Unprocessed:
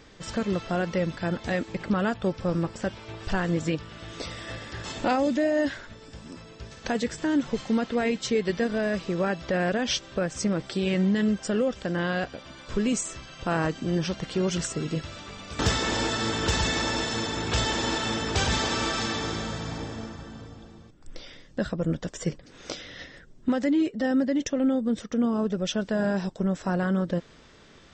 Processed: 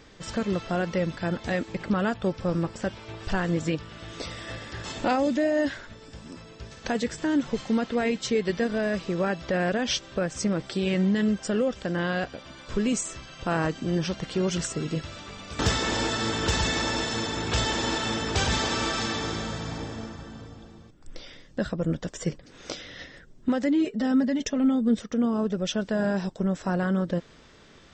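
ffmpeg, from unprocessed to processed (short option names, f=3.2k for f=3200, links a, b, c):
-filter_complex "[0:a]asettb=1/sr,asplit=3[a][b][c];[a]atrim=end=23.844[d];[b]atrim=start=23.84:end=24.99,asetpts=PTS-STARTPTS,afade=t=in:d=0.004:c=qsin,afade=t=out:st=1.146:d=0.004:c=qsin,aecho=1:1:4.7:0.65,atrim=end_sample=50715[e];[c]atrim=start=24.986[f];[d][e]acrossfade=d=0.004:c1=hsin:c2=qsin[g];[g][f]acrossfade=d=0.004:c1=qsin:c2=hsin"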